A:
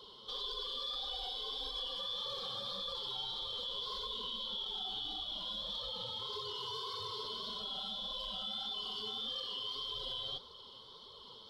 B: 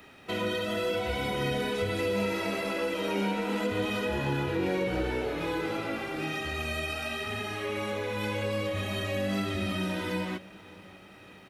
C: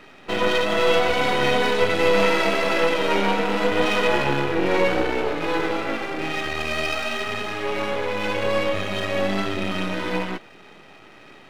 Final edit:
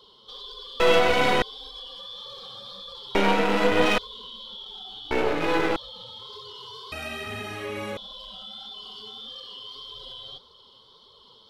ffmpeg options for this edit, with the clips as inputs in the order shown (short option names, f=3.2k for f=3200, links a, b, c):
-filter_complex "[2:a]asplit=3[a][b][c];[0:a]asplit=5[d][e][f][g][h];[d]atrim=end=0.802[i];[a]atrim=start=0.798:end=1.422[j];[e]atrim=start=1.418:end=3.152[k];[b]atrim=start=3.148:end=3.982[l];[f]atrim=start=3.978:end=5.112[m];[c]atrim=start=5.108:end=5.762[n];[g]atrim=start=5.758:end=6.922[o];[1:a]atrim=start=6.918:end=7.972[p];[h]atrim=start=7.968[q];[i][j]acrossfade=d=0.004:c1=hsin:c2=hsin[r];[r][k]acrossfade=d=0.004:c1=hsin:c2=hsin[s];[s][l]acrossfade=d=0.004:c1=hsin:c2=hsin[t];[t][m]acrossfade=d=0.004:c1=hsin:c2=hsin[u];[u][n]acrossfade=d=0.004:c1=hsin:c2=hsin[v];[v][o]acrossfade=d=0.004:c1=hsin:c2=hsin[w];[w][p]acrossfade=d=0.004:c1=hsin:c2=hsin[x];[x][q]acrossfade=d=0.004:c1=hsin:c2=hsin"